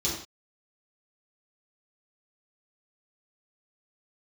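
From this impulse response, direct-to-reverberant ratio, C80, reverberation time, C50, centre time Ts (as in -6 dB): -7.5 dB, 7.5 dB, not exponential, 3.5 dB, 39 ms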